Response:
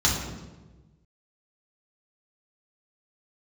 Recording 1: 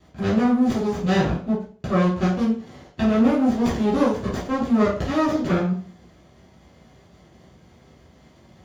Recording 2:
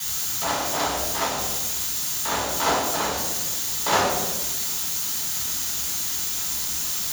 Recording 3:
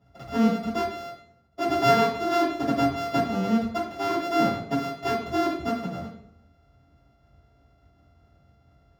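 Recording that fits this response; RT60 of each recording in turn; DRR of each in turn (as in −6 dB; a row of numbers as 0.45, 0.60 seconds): 2; 0.40, 1.2, 0.65 seconds; −9.0, −4.5, −10.0 decibels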